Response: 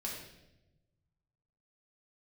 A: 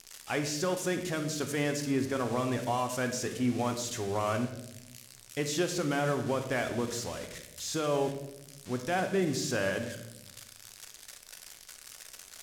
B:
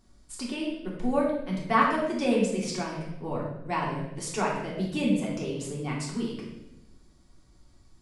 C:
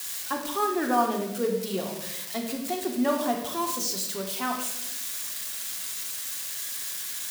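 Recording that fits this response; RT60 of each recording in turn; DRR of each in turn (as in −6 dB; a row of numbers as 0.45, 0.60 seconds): B; 1.0, 0.95, 0.95 seconds; 5.5, −4.5, 1.0 decibels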